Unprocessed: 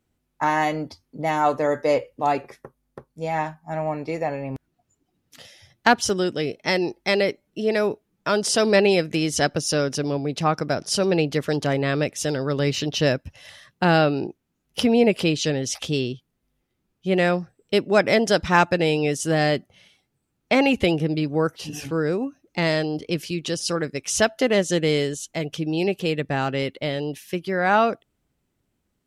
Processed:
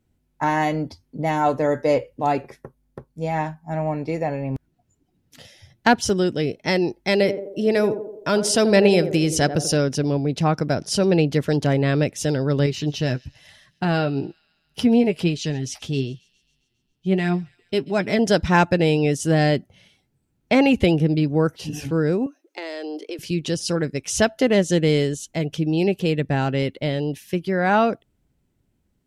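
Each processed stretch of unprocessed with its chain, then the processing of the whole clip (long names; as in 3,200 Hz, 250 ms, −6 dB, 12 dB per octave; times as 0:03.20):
0:07.11–0:09.77: high-shelf EQ 9,600 Hz +7.5 dB + feedback echo with a band-pass in the loop 85 ms, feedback 59%, band-pass 450 Hz, level −9 dB
0:12.66–0:18.19: notch filter 530 Hz, Q 5.8 + flanger 1.1 Hz, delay 4.6 ms, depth 4.1 ms, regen +51% + delay with a high-pass on its return 135 ms, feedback 63%, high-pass 2,500 Hz, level −22 dB
0:22.26–0:23.19: Butterworth high-pass 310 Hz 48 dB per octave + downward compressor, threshold −29 dBFS
whole clip: low-shelf EQ 300 Hz +8.5 dB; notch filter 1,200 Hz, Q 12; level −1 dB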